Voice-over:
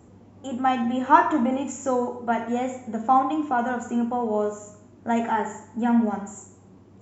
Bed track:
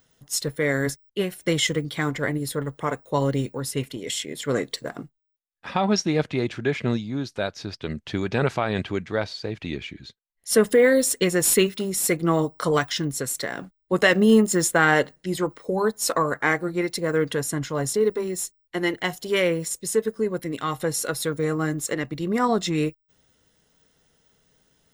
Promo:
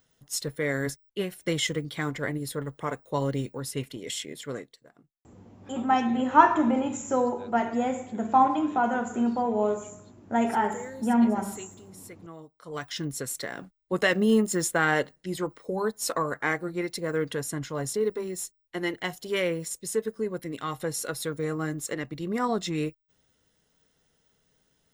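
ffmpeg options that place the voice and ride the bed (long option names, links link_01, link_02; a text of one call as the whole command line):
ffmpeg -i stem1.wav -i stem2.wav -filter_complex "[0:a]adelay=5250,volume=-1dB[link_01];[1:a]volume=13dB,afade=type=out:start_time=4.27:duration=0.46:silence=0.11885,afade=type=in:start_time=12.65:duration=0.4:silence=0.125893[link_02];[link_01][link_02]amix=inputs=2:normalize=0" out.wav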